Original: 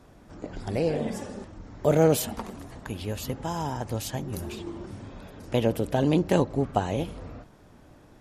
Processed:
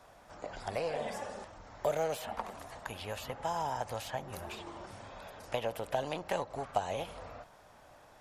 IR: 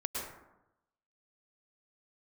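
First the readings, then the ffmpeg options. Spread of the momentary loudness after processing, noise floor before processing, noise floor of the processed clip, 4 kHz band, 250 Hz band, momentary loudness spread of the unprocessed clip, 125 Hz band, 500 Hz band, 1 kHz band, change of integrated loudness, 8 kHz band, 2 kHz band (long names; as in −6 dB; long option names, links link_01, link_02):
14 LU, −53 dBFS, −58 dBFS, −6.0 dB, −19.0 dB, 20 LU, −17.5 dB, −9.0 dB, −3.0 dB, −10.5 dB, −10.5 dB, −3.5 dB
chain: -filter_complex "[0:a]aeval=exprs='0.398*(cos(1*acos(clip(val(0)/0.398,-1,1)))-cos(1*PI/2))+0.01*(cos(8*acos(clip(val(0)/0.398,-1,1)))-cos(8*PI/2))':channel_layout=same,acrossover=split=690|3100[link_01][link_02][link_03];[link_01]acompressor=threshold=-29dB:ratio=4[link_04];[link_02]acompressor=threshold=-38dB:ratio=4[link_05];[link_03]acompressor=threshold=-51dB:ratio=4[link_06];[link_04][link_05][link_06]amix=inputs=3:normalize=0,lowshelf=frequency=460:width_type=q:width=1.5:gain=-11.5"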